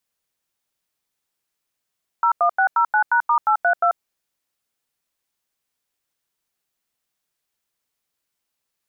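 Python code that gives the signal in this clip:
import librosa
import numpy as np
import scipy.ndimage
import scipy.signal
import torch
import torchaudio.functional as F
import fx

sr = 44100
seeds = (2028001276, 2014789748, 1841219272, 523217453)

y = fx.dtmf(sr, digits='01609#*832', tone_ms=88, gap_ms=89, level_db=-16.5)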